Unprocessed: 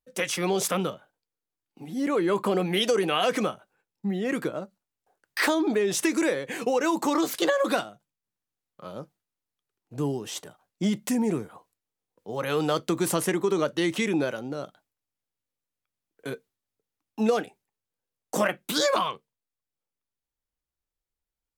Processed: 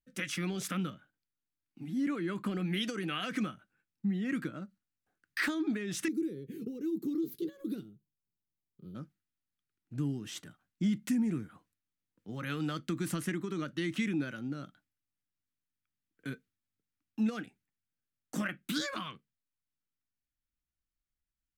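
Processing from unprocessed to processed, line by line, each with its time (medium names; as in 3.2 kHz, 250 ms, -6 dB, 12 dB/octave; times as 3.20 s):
6.08–8.95 s: FFT filter 180 Hz 0 dB, 280 Hz -4 dB, 410 Hz +9 dB, 620 Hz -23 dB, 1.7 kHz -27 dB, 2.7 kHz -21 dB, 4 kHz -13 dB, 7.7 kHz -18 dB, 15 kHz +5 dB
whole clip: treble shelf 2.6 kHz -10.5 dB; compression 1.5:1, threshold -32 dBFS; high-order bell 640 Hz -15.5 dB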